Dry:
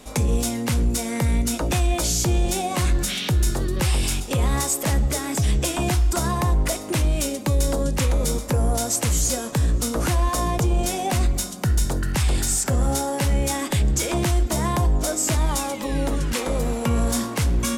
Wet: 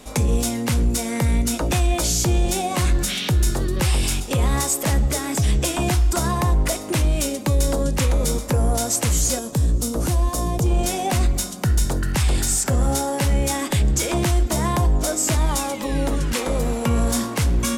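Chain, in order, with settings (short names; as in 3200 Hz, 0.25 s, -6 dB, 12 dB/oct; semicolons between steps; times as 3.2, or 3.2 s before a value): 9.39–10.66 bell 1800 Hz -9.5 dB 2.2 oct; gain +1.5 dB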